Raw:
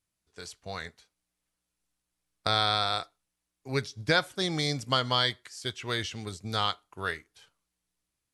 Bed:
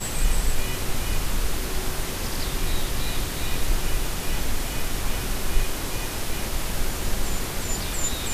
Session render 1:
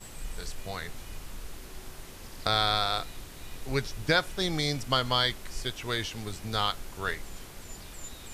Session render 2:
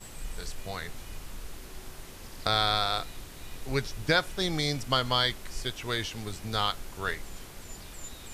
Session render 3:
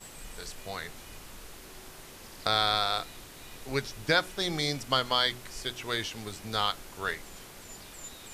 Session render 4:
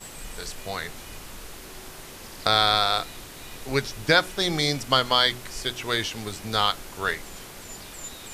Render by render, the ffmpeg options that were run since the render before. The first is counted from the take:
-filter_complex "[1:a]volume=0.15[s0];[0:a][s0]amix=inputs=2:normalize=0"
-af anull
-af "lowshelf=f=110:g=-10,bandreject=f=61.59:t=h:w=4,bandreject=f=123.18:t=h:w=4,bandreject=f=184.77:t=h:w=4,bandreject=f=246.36:t=h:w=4,bandreject=f=307.95:t=h:w=4,bandreject=f=369.54:t=h:w=4"
-af "volume=2"

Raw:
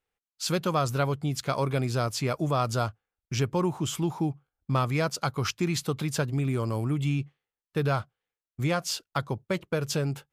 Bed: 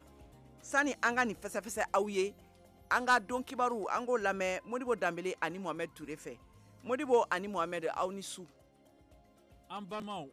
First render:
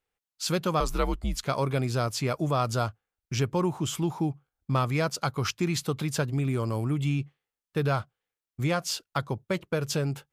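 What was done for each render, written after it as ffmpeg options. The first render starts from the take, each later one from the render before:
-filter_complex "[0:a]asettb=1/sr,asplit=3[s0][s1][s2];[s0]atrim=end=0.804[s3];[s1]atrim=start=0.8:end=1.46,asetpts=PTS-STARTPTS,afade=t=in:d=0.004:c=qsin,afade=t=out:st=0.656:d=0.004:c=qsin,afreqshift=-91[s4];[s2]atrim=start=1.456[s5];[s3][s4]acrossfade=d=0.004:c1=hsin:c2=qsin[s6];[s6][s5]acrossfade=d=0.004:c1=qsin:c2=hsin"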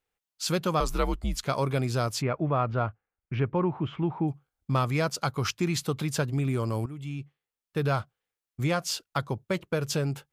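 -filter_complex "[0:a]asplit=3[s0][s1][s2];[s0]afade=t=out:st=2.21:d=0.02[s3];[s1]lowpass=f=2500:w=0.5412,lowpass=f=2500:w=1.3066,afade=t=in:st=2.21:d=0.02,afade=t=out:st=4.27:d=0.02[s4];[s2]afade=t=in:st=4.27:d=0.02[s5];[s3][s4][s5]amix=inputs=3:normalize=0,asplit=2[s6][s7];[s6]atrim=end=6.86,asetpts=PTS-STARTPTS,afade=t=out:st=6.856:d=0.004:c=hsin:silence=0.188365[s8];[s7]atrim=start=6.86,asetpts=PTS-STARTPTS,afade=t=in:d=1.07:silence=0.188365[s9];[s8][s9]concat=n=2:v=0:a=1"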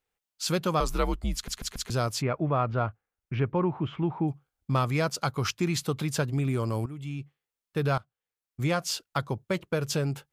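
-filter_complex "[0:a]asplit=6[s0][s1][s2][s3][s4][s5];[s0]atrim=end=1.482[s6];[s1]atrim=start=1.338:end=1.482[s7];[s2]atrim=start=1.338:end=1.482[s8];[s3]atrim=start=1.338:end=1.482[s9];[s4]atrim=start=1.898:end=7.98,asetpts=PTS-STARTPTS,afade=t=out:st=6.078:d=0.004:c=hsin:silence=0.133352[s10];[s5]atrim=start=7.98,asetpts=PTS-STARTPTS,afade=t=in:d=0.7:silence=0.133352[s11];[s6][s7]acrossfade=d=0.004:c1=hsin:c2=hsin[s12];[s12][s8]acrossfade=d=0.004:c1=hsin:c2=hsin[s13];[s13][s9]acrossfade=d=0.004:c1=hsin:c2=hsin[s14];[s10][s11]concat=n=2:v=0:a=1[s15];[s14][s15]acrossfade=d=0.004:c1=hsin:c2=hsin"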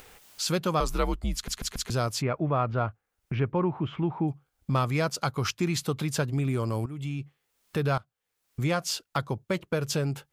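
-af "acompressor=mode=upward:threshold=0.0447:ratio=2.5"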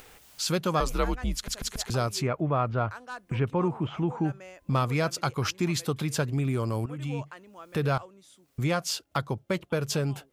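-filter_complex "[1:a]volume=0.237[s0];[0:a][s0]amix=inputs=2:normalize=0"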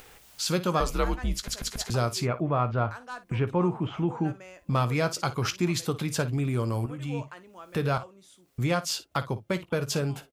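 -af "aecho=1:1:17|56:0.237|0.178"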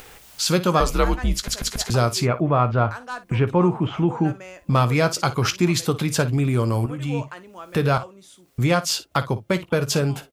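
-af "volume=2.24"

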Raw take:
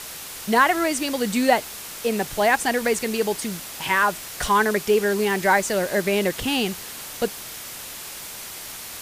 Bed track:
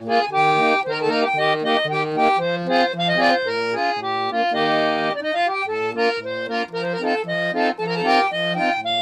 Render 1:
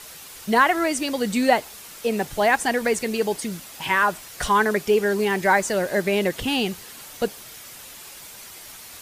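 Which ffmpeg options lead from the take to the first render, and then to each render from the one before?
-af "afftdn=nr=7:nf=-37"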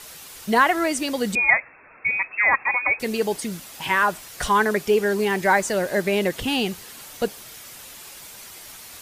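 -filter_complex "[0:a]asettb=1/sr,asplit=3[s0][s1][s2];[s0]atrim=end=1.354[s3];[s1]atrim=start=1.35:end=3,asetpts=PTS-STARTPTS,afade=t=in:d=0.004:c=qsin,afade=t=out:st=1.646:d=0.004:c=qsin,lowpass=f=2300:t=q:w=0.5098,lowpass=f=2300:t=q:w=0.6013,lowpass=f=2300:t=q:w=0.9,lowpass=f=2300:t=q:w=2.563,afreqshift=-2700[s4];[s2]atrim=start=2.996[s5];[s3][s4]acrossfade=d=0.004:c1=hsin:c2=qsin[s6];[s6][s5]acrossfade=d=0.004:c1=qsin:c2=hsin"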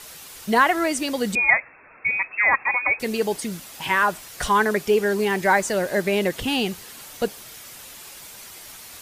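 -af anull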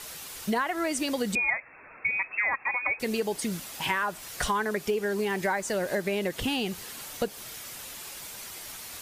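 -af "acompressor=threshold=0.0562:ratio=6"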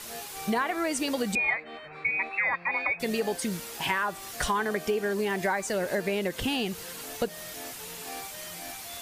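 -filter_complex "[1:a]volume=0.0596[s0];[0:a][s0]amix=inputs=2:normalize=0"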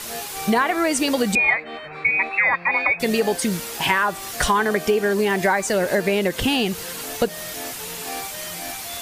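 -af "volume=2.66"

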